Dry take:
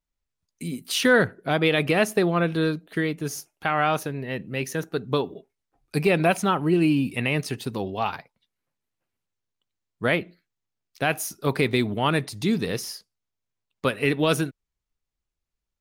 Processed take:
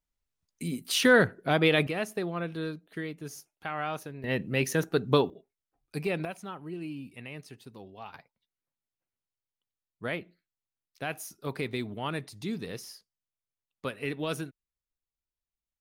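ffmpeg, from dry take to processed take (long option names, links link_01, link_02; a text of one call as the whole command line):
ffmpeg -i in.wav -af "asetnsamples=nb_out_samples=441:pad=0,asendcmd='1.87 volume volume -11dB;4.24 volume volume 1dB;5.3 volume volume -10dB;6.25 volume volume -18dB;8.14 volume volume -11dB',volume=-2dB" out.wav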